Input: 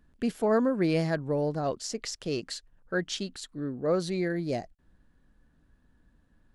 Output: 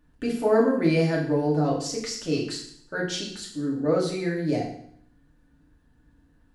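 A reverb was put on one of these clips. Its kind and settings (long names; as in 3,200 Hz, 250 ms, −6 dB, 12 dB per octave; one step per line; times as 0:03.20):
feedback delay network reverb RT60 0.64 s, low-frequency decay 1.25×, high-frequency decay 1×, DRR −3.5 dB
level −1.5 dB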